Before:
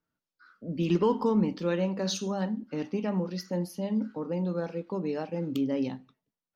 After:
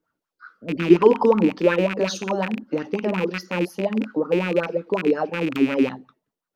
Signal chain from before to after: rattle on loud lows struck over -34 dBFS, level -23 dBFS; sweeping bell 5.5 Hz 320–1500 Hz +17 dB; trim +1.5 dB

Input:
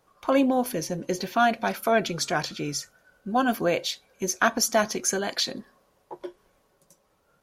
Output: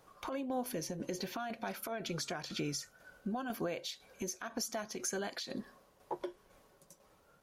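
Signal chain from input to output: compression 12:1, threshold -34 dBFS, peak gain reduction 18.5 dB; peak limiter -29 dBFS, peak gain reduction 8.5 dB; tremolo saw down 2 Hz, depth 50%; trim +3 dB

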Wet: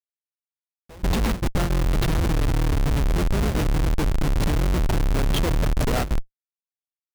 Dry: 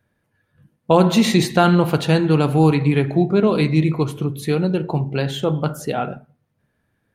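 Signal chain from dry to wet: octave divider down 2 oct, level -1 dB; compression 8:1, threshold -23 dBFS, peak gain reduction 15.5 dB; harmonic-percussive split harmonic -3 dB; Schmitt trigger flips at -31 dBFS; gate with hold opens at -27 dBFS; bass shelf 69 Hz +6 dB; trim +7.5 dB

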